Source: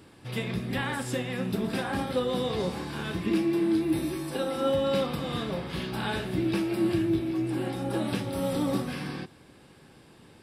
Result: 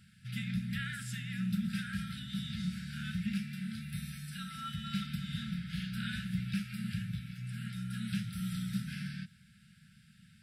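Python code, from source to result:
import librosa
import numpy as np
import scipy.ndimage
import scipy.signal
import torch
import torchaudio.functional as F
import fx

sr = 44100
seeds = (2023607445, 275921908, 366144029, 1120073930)

y = fx.brickwall_bandstop(x, sr, low_hz=220.0, high_hz=1300.0)
y = fx.peak_eq(y, sr, hz=210.0, db=7.5, octaves=0.99)
y = y * 10.0 ** (-6.5 / 20.0)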